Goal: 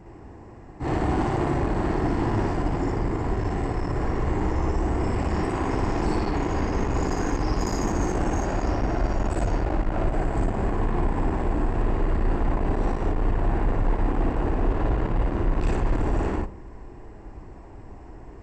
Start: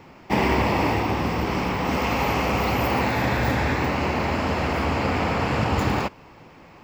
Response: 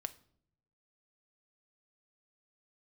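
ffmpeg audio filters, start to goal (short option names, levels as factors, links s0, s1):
-filter_complex "[0:a]asubboost=boost=3:cutoff=180,asetrate=16361,aresample=44100,asoftclip=type=tanh:threshold=0.0668,asplit=2[s0][s1];[1:a]atrim=start_sample=2205,asetrate=70560,aresample=44100,adelay=58[s2];[s1][s2]afir=irnorm=-1:irlink=0,volume=2.24[s3];[s0][s3]amix=inputs=2:normalize=0"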